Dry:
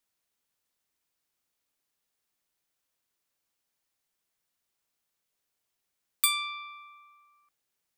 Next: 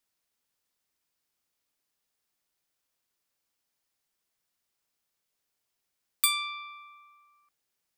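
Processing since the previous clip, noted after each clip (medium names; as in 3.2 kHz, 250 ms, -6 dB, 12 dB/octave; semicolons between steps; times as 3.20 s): peaking EQ 5 kHz +2.5 dB 0.21 oct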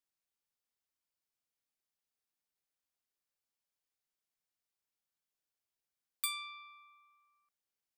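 feedback comb 770 Hz, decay 0.15 s, harmonics all, mix 40%; trim -7 dB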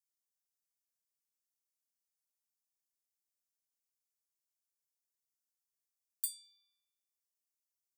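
inverse Chebyshev high-pass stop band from 2.1 kHz, stop band 50 dB; trim +1 dB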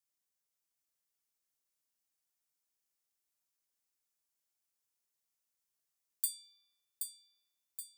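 thinning echo 775 ms, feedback 55%, level -6 dB; trim +2.5 dB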